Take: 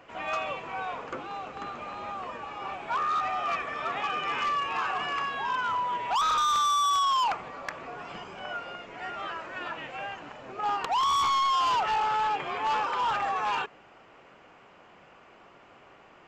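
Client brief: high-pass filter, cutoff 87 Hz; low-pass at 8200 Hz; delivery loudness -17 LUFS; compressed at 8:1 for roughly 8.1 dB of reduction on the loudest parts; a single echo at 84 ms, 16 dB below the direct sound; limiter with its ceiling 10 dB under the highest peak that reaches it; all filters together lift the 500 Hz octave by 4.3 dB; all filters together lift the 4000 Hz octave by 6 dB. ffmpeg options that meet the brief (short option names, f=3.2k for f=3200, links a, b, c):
-af "highpass=87,lowpass=8.2k,equalizer=f=500:t=o:g=5.5,equalizer=f=4k:t=o:g=8,acompressor=threshold=-30dB:ratio=8,alimiter=level_in=4.5dB:limit=-24dB:level=0:latency=1,volume=-4.5dB,aecho=1:1:84:0.158,volume=18dB"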